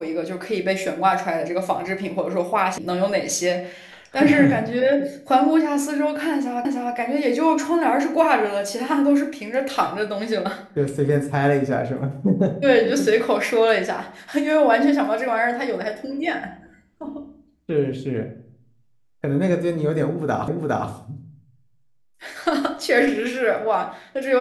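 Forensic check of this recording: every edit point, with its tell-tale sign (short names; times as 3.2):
2.78 sound cut off
6.65 repeat of the last 0.3 s
20.48 repeat of the last 0.41 s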